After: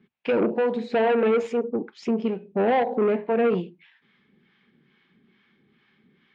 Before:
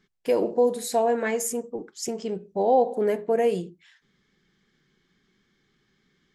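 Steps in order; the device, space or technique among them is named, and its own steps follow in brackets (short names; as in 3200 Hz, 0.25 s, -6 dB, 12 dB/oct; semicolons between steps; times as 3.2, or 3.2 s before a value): 0.91–1.71 bell 420 Hz +10.5 dB 0.45 oct; guitar amplifier with harmonic tremolo (harmonic tremolo 2.3 Hz, depth 70%, crossover 650 Hz; soft clip -25 dBFS, distortion -9 dB; speaker cabinet 100–3500 Hz, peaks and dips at 230 Hz +7 dB, 900 Hz +4 dB, 2500 Hz +7 dB); gain +7 dB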